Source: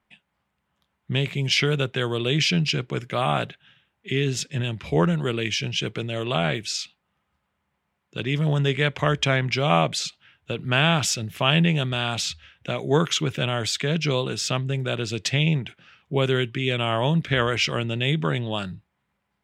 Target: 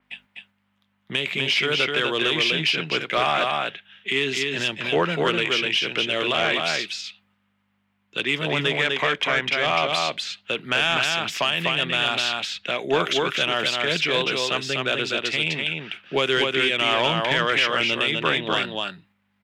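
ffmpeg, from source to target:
ffmpeg -i in.wav -filter_complex "[0:a]crystalizer=i=9:c=0,dynaudnorm=framelen=610:gausssize=11:maxgain=11.5dB,aeval=exprs='val(0)+0.00158*(sin(2*PI*50*n/s)+sin(2*PI*2*50*n/s)/2+sin(2*PI*3*50*n/s)/3+sin(2*PI*4*50*n/s)/4+sin(2*PI*5*50*n/s)/5)':channel_layout=same,agate=range=-7dB:threshold=-50dB:ratio=16:detection=peak,alimiter=limit=-11dB:level=0:latency=1:release=198,acontrast=46,acrossover=split=210 3400:gain=0.0708 1 0.0891[link_01][link_02][link_03];[link_01][link_02][link_03]amix=inputs=3:normalize=0,aecho=1:1:250:0.668,asoftclip=type=tanh:threshold=-11dB,adynamicequalizer=threshold=0.0126:dfrequency=5400:dqfactor=0.7:tfrequency=5400:tqfactor=0.7:attack=5:release=100:ratio=0.375:range=2:mode=cutabove:tftype=highshelf,volume=1dB" out.wav

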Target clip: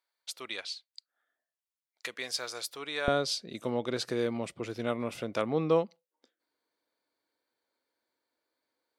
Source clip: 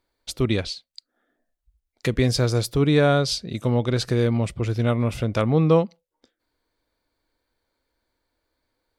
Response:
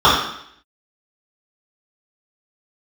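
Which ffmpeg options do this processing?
-af "asetnsamples=nb_out_samples=441:pad=0,asendcmd='3.08 highpass f 270',highpass=920,volume=-6.5dB"

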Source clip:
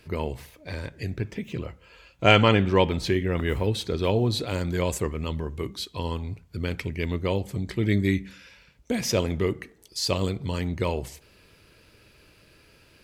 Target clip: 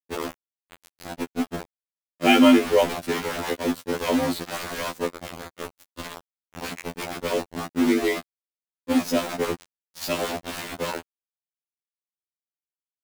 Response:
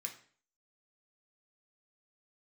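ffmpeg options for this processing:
-filter_complex "[0:a]equalizer=frequency=190:width=1.7:gain=13.5,acrossover=split=170|490|5800[link_01][link_02][link_03][link_04];[link_01]acompressor=threshold=-38dB:ratio=12[link_05];[link_05][link_02][link_03][link_04]amix=inputs=4:normalize=0,afreqshift=35,aeval=exprs='val(0)*gte(abs(val(0)),0.0794)':channel_layout=same,afftfilt=real='re*2*eq(mod(b,4),0)':imag='im*2*eq(mod(b,4),0)':win_size=2048:overlap=0.75,volume=1.5dB"

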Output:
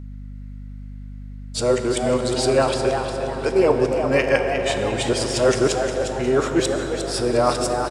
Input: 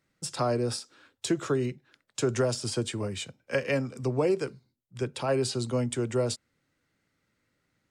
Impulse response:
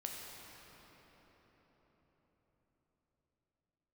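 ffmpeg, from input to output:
-filter_complex "[0:a]areverse,bass=frequency=250:gain=-9,treble=frequency=4000:gain=-3,asplit=5[link_01][link_02][link_03][link_04][link_05];[link_02]adelay=356,afreqshift=140,volume=-8dB[link_06];[link_03]adelay=712,afreqshift=280,volume=-16.9dB[link_07];[link_04]adelay=1068,afreqshift=420,volume=-25.7dB[link_08];[link_05]adelay=1424,afreqshift=560,volume=-34.6dB[link_09];[link_01][link_06][link_07][link_08][link_09]amix=inputs=5:normalize=0,asplit=2[link_10][link_11];[1:a]atrim=start_sample=2205,asetrate=33516,aresample=44100[link_12];[link_11][link_12]afir=irnorm=-1:irlink=0,volume=1dB[link_13];[link_10][link_13]amix=inputs=2:normalize=0,aeval=exprs='val(0)+0.0126*(sin(2*PI*50*n/s)+sin(2*PI*2*50*n/s)/2+sin(2*PI*3*50*n/s)/3+sin(2*PI*4*50*n/s)/4+sin(2*PI*5*50*n/s)/5)':channel_layout=same,volume=4.5dB"

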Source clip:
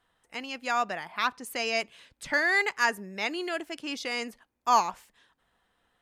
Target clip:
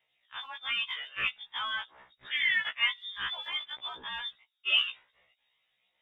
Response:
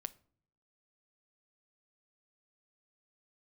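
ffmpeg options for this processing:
-af "lowpass=frequency=3200:width_type=q:width=0.5098,lowpass=frequency=3200:width_type=q:width=0.6013,lowpass=frequency=3200:width_type=q:width=0.9,lowpass=frequency=3200:width_type=q:width=2.563,afreqshift=-3800,aphaser=in_gain=1:out_gain=1:delay=2.1:decay=0.36:speed=0.5:type=triangular,afftfilt=real='re*1.73*eq(mod(b,3),0)':imag='im*1.73*eq(mod(b,3),0)':win_size=2048:overlap=0.75,volume=-1.5dB"

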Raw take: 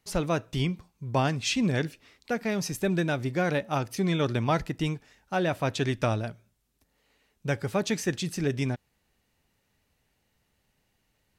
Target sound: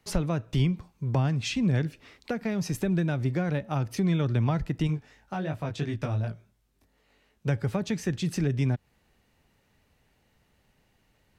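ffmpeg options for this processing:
ffmpeg -i in.wav -filter_complex "[0:a]highshelf=frequency=3800:gain=-7,acrossover=split=170[link_01][link_02];[link_02]acompressor=threshold=-36dB:ratio=6[link_03];[link_01][link_03]amix=inputs=2:normalize=0,asettb=1/sr,asplit=3[link_04][link_05][link_06];[link_04]atrim=end=4.874[link_07];[link_05]atrim=start=4.87:end=7.47,asetpts=PTS-STARTPTS,afade=type=in:duration=0.004:curve=qsin,afade=type=out:start_time=2.596:duration=0.004:curve=qsin,flanger=delay=18.5:depth=2.2:speed=2.8[link_08];[link_06]atrim=start=7.466[link_09];[link_07][link_08]acrossfade=duration=0.004:curve1=hsin:curve2=qsin[link_10];[link_10][link_09]acrossfade=duration=0.004:curve1=qsin:curve2=hsin,volume=6.5dB" out.wav

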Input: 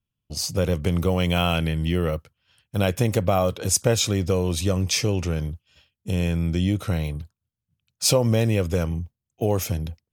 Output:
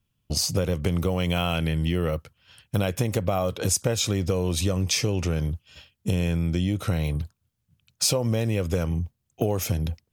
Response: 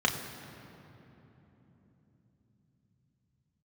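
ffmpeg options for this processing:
-af "acompressor=threshold=-32dB:ratio=4,volume=9dB"

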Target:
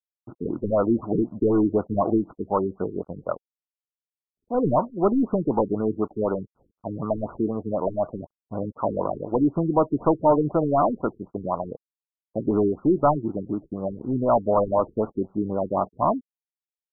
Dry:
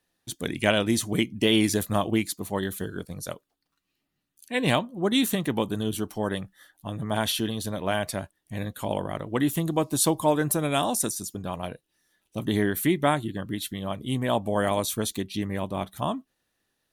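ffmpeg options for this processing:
ffmpeg -i in.wav -filter_complex "[0:a]asplit=2[link_01][link_02];[link_02]highpass=frequency=720:poles=1,volume=22dB,asoftclip=type=tanh:threshold=-6dB[link_03];[link_01][link_03]amix=inputs=2:normalize=0,lowpass=frequency=6200:poles=1,volume=-6dB,aeval=exprs='sgn(val(0))*max(abs(val(0))-0.00794,0)':channel_layout=same,afftfilt=real='re*lt(b*sr/1024,430*pow(1500/430,0.5+0.5*sin(2*PI*4*pts/sr)))':imag='im*lt(b*sr/1024,430*pow(1500/430,0.5+0.5*sin(2*PI*4*pts/sr)))':win_size=1024:overlap=0.75,volume=-1.5dB" out.wav

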